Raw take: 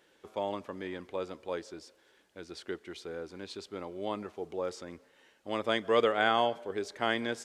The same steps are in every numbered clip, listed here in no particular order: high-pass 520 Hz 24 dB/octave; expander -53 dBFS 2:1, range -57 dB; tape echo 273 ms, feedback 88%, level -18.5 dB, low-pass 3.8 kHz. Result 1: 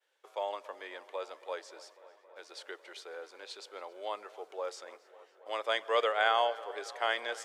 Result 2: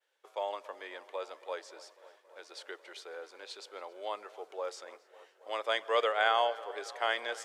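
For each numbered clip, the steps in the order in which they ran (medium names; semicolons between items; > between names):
expander > tape echo > high-pass; tape echo > high-pass > expander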